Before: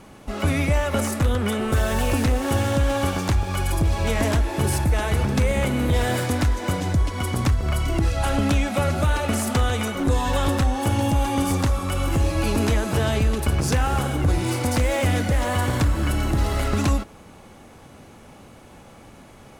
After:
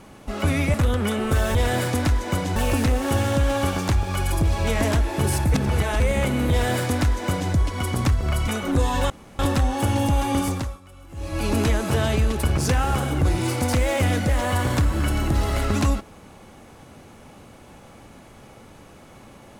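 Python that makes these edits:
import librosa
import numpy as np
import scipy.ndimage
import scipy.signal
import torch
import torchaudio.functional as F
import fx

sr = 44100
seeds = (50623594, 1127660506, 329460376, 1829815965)

y = fx.edit(x, sr, fx.cut(start_s=0.74, length_s=0.41),
    fx.reverse_span(start_s=4.94, length_s=0.46),
    fx.duplicate(start_s=5.91, length_s=1.01, to_s=1.96),
    fx.cut(start_s=7.88, length_s=1.92),
    fx.insert_room_tone(at_s=10.42, length_s=0.29),
    fx.fade_down_up(start_s=11.41, length_s=1.16, db=-22.0, fade_s=0.42), tone=tone)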